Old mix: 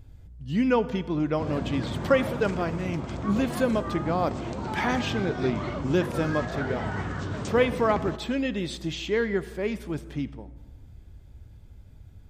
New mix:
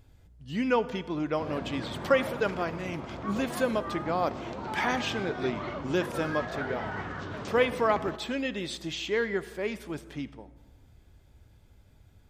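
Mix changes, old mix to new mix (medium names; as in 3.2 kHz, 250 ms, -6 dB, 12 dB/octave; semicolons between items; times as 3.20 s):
background: add distance through air 120 m; master: add bass shelf 270 Hz -10.5 dB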